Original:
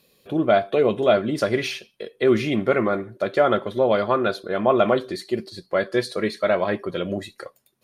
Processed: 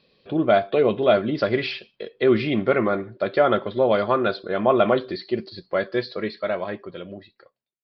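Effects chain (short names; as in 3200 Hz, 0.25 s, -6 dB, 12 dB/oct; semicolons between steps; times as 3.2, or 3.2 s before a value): ending faded out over 2.42 s; downsampling 11025 Hz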